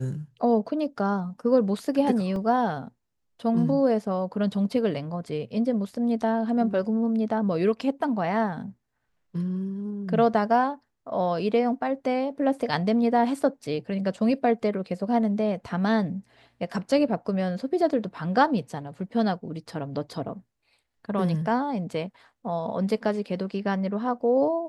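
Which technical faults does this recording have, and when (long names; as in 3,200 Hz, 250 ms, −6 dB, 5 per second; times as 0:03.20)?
0:02.36: drop-out 2.1 ms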